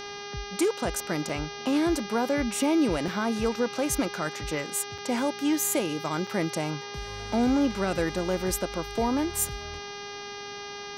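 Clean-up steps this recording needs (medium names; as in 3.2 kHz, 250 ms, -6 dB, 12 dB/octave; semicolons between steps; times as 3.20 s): de-hum 406.2 Hz, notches 15; interpolate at 1.29/3.08/4.98/6.27 s, 3.2 ms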